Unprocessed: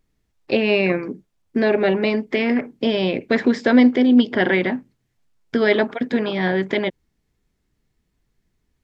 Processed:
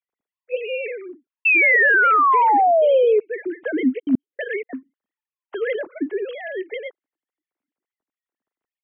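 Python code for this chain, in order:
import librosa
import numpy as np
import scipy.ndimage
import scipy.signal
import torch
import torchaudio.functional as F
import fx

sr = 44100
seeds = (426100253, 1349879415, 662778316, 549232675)

y = fx.sine_speech(x, sr)
y = fx.spec_paint(y, sr, seeds[0], shape='fall', start_s=1.45, length_s=1.75, low_hz=410.0, high_hz=2700.0, level_db=-8.0)
y = fx.step_gate(y, sr, bpm=188, pattern='.xxx..x..', floor_db=-60.0, edge_ms=4.5, at=(3.98, 4.69), fade=0.02)
y = fx.peak_eq(y, sr, hz=320.0, db=fx.line((5.99, 7.5), (6.5, 13.5)), octaves=0.94, at=(5.99, 6.5), fade=0.02)
y = y * 10.0 ** (-7.0 / 20.0)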